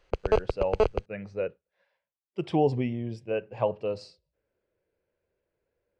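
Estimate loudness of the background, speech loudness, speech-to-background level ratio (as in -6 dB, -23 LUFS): -28.5 LUFS, -31.5 LUFS, -3.0 dB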